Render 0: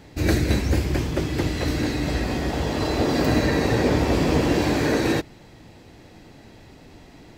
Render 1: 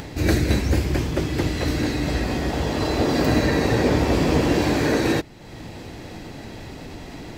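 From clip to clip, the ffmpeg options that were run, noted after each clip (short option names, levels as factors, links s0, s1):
-af "acompressor=mode=upward:threshold=0.0447:ratio=2.5,volume=1.12"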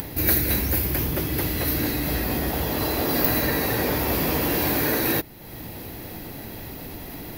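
-filter_complex "[0:a]acrossover=split=750|3300[s0][s1][s2];[s0]alimiter=limit=0.119:level=0:latency=1[s3];[s2]aexciter=amount=8:drive=9.8:freq=11000[s4];[s3][s1][s4]amix=inputs=3:normalize=0,volume=0.891"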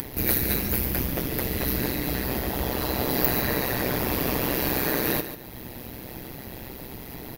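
-af "tremolo=f=130:d=1,aecho=1:1:142|284|426:0.282|0.0874|0.0271,volume=1.19"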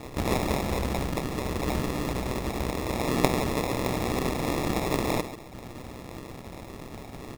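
-af "acrusher=samples=29:mix=1:aa=0.000001,volume=0.794"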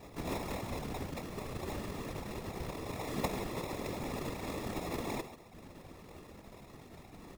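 -af "afftfilt=real='hypot(re,im)*cos(2*PI*random(0))':imag='hypot(re,im)*sin(2*PI*random(1))':win_size=512:overlap=0.75,volume=0.562"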